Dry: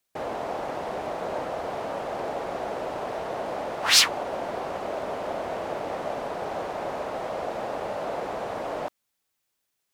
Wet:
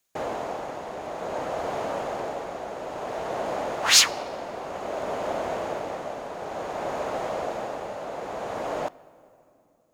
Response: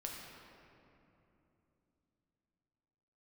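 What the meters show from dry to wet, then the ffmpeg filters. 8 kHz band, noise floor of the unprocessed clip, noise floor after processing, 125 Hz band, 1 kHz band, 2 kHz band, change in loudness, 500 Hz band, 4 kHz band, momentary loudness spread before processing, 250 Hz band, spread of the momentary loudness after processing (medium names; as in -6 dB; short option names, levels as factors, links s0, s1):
+3.5 dB, -79 dBFS, -62 dBFS, 0.0 dB, 0.0 dB, +0.5 dB, +0.5 dB, 0.0 dB, +0.5 dB, 6 LU, 0.0 dB, 10 LU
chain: -filter_complex "[0:a]equalizer=f=6700:w=7.1:g=8,tremolo=f=0.56:d=0.51,asplit=2[s0][s1];[1:a]atrim=start_sample=2205[s2];[s1][s2]afir=irnorm=-1:irlink=0,volume=0.168[s3];[s0][s3]amix=inputs=2:normalize=0,volume=1.19"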